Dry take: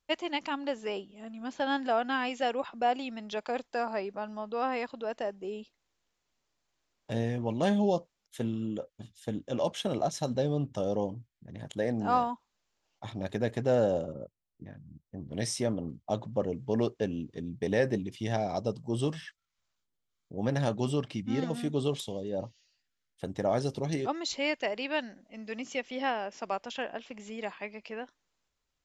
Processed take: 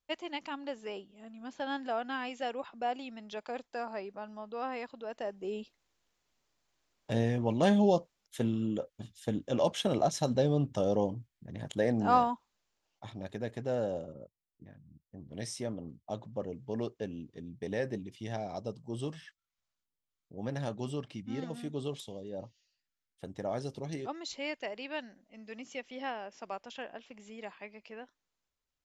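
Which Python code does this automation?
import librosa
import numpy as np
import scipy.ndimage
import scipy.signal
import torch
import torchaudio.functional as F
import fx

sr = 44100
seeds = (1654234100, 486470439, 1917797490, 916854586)

y = fx.gain(x, sr, db=fx.line((5.09, -6.0), (5.56, 1.5), (12.29, 1.5), (13.33, -7.0)))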